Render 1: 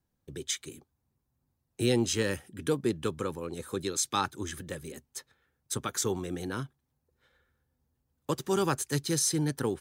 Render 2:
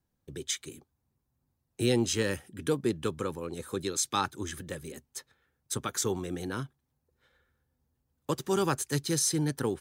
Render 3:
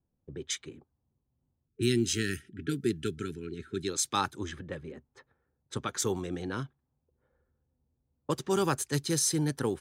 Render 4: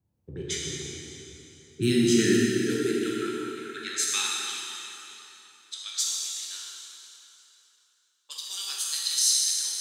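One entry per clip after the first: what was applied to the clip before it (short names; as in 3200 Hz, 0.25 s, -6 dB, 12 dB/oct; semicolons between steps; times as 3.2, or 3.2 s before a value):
nothing audible
low-pass opened by the level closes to 750 Hz, open at -27 dBFS; spectral gain 1.68–3.88, 440–1300 Hz -26 dB
high-pass sweep 80 Hz -> 3900 Hz, 1.33–4.54; plate-style reverb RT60 3.3 s, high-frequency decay 0.85×, DRR -5 dB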